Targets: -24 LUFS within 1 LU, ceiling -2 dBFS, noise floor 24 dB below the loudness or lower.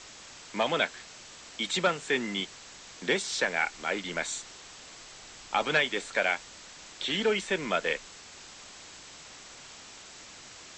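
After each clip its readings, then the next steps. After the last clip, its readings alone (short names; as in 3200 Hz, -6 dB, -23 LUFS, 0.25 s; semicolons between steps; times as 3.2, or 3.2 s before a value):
noise floor -49 dBFS; noise floor target -54 dBFS; loudness -29.5 LUFS; peak -10.5 dBFS; loudness target -24.0 LUFS
-> noise print and reduce 6 dB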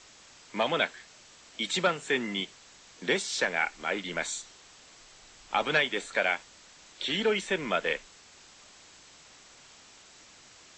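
noise floor -55 dBFS; loudness -29.5 LUFS; peak -10.5 dBFS; loudness target -24.0 LUFS
-> gain +5.5 dB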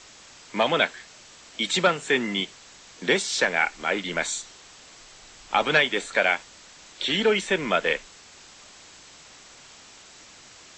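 loudness -24.0 LUFS; peak -5.0 dBFS; noise floor -49 dBFS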